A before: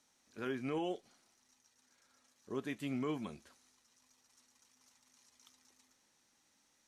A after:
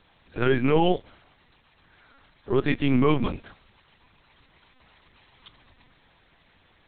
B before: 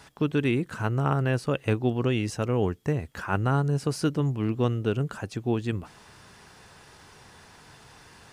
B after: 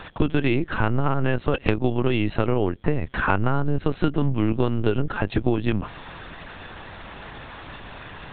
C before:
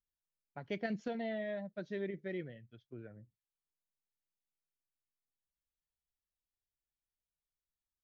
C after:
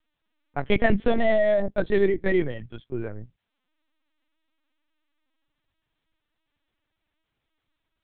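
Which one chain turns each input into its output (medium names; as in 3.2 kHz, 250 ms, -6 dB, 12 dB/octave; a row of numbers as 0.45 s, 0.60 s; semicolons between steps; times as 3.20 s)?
LPC vocoder at 8 kHz pitch kept; compression, threshold -29 dBFS; normalise loudness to -24 LUFS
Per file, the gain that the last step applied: +17.5 dB, +13.0 dB, +19.0 dB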